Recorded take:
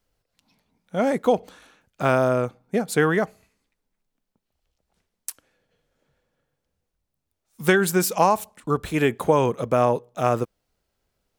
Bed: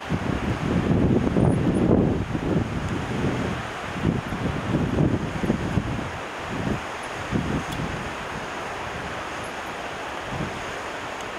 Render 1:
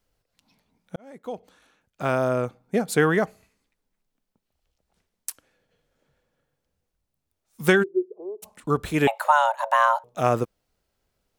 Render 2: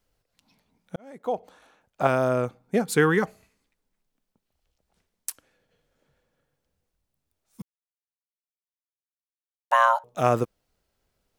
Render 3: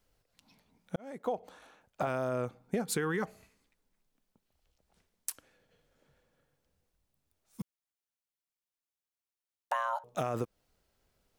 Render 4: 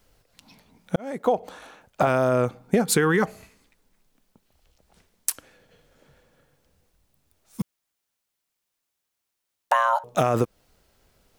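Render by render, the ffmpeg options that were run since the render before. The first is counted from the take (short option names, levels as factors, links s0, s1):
-filter_complex "[0:a]asplit=3[s0][s1][s2];[s0]afade=t=out:st=7.82:d=0.02[s3];[s1]asuperpass=centerf=390:order=4:qfactor=5.5,afade=t=in:st=7.82:d=0.02,afade=t=out:st=8.42:d=0.02[s4];[s2]afade=t=in:st=8.42:d=0.02[s5];[s3][s4][s5]amix=inputs=3:normalize=0,asettb=1/sr,asplit=3[s6][s7][s8];[s6]atrim=end=9.074[s9];[s7]atrim=start=9.07:end=10.04,asetpts=PTS-STARTPTS,afade=t=in:d=0.004:c=qsin,afade=t=out:st=0.966:d=0.004:c=qsin,afreqshift=440[s10];[s8]atrim=start=10.036[s11];[s9][s10]acrossfade=d=0.004:c1=hsin:c2=qsin[s12];[s12][s11]acrossfade=d=0.004:c1=qsin:c2=hsin,asplit=2[s13][s14];[s13]atrim=end=0.96,asetpts=PTS-STARTPTS,afade=t=out:st=0.956:d=0.004:c=hsin[s15];[s14]atrim=start=0.96,asetpts=PTS-STARTPTS,afade=t=in:d=1.83[s16];[s15][s16]concat=n=2:v=0:a=1"
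-filter_complex "[0:a]asettb=1/sr,asplit=3[s0][s1][s2];[s0]atrim=end=1.204[s3];[s1]atrim=start=1.2:end=2.07,asetpts=PTS-STARTPTS,afade=t=in:d=0.004:c=qsin,afade=t=out:st=0.866:d=0.004:c=qsin,equalizer=f=740:w=0.93:g=9[s4];[s2]atrim=start=2.066[s5];[s3][s4]acrossfade=d=0.004:c1=hsin:c2=qsin[s6];[s6][s5]acrossfade=d=0.004:c1=qsin:c2=hsin,asettb=1/sr,asplit=3[s7][s8][s9];[s7]atrim=end=2.824[s10];[s8]atrim=start=2.82:end=3.23,asetpts=PTS-STARTPTS,afade=t=in:d=0.004:c=qsin,afade=t=out:st=0.406:d=0.004:c=qsin,asuperstop=centerf=640:order=4:qfactor=2.6[s11];[s9]atrim=start=3.226[s12];[s10][s11]acrossfade=d=0.004:c1=hsin:c2=qsin[s13];[s13][s12]acrossfade=d=0.004:c1=qsin:c2=hsin,asplit=3[s14][s15][s16];[s14]atrim=end=7.62,asetpts=PTS-STARTPTS,afade=t=out:st=7.616:d=0.004:c=hsin[s17];[s15]atrim=start=7.62:end=9.71,asetpts=PTS-STARTPTS,volume=0[s18];[s16]atrim=start=9.71,asetpts=PTS-STARTPTS,afade=t=in:d=0.004:c=hsin[s19];[s17][s18][s19]concat=n=3:v=0:a=1"
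-af "alimiter=limit=0.158:level=0:latency=1:release=22,acompressor=threshold=0.0355:ratio=6"
-af "volume=3.98"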